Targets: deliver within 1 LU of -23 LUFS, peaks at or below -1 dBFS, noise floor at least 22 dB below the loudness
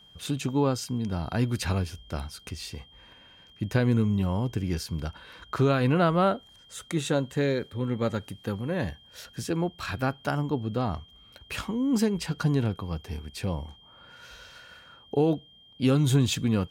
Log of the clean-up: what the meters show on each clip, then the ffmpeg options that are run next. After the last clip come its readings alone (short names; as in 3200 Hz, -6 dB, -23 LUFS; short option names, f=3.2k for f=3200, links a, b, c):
steady tone 3200 Hz; tone level -53 dBFS; loudness -28.0 LUFS; peak -13.0 dBFS; loudness target -23.0 LUFS
-> -af "bandreject=f=3.2k:w=30"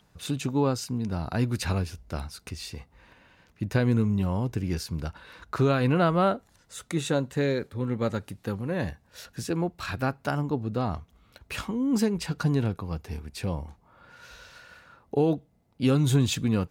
steady tone none; loudness -28.0 LUFS; peak -13.0 dBFS; loudness target -23.0 LUFS
-> -af "volume=5dB"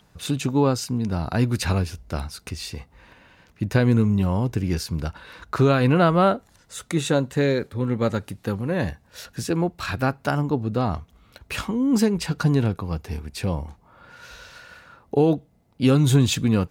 loudness -23.0 LUFS; peak -8.0 dBFS; noise floor -59 dBFS